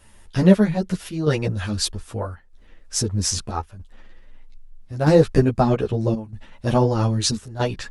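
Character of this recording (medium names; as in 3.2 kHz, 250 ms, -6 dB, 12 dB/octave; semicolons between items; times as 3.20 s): chopped level 0.79 Hz, depth 65%, duty 85%; a shimmering, thickened sound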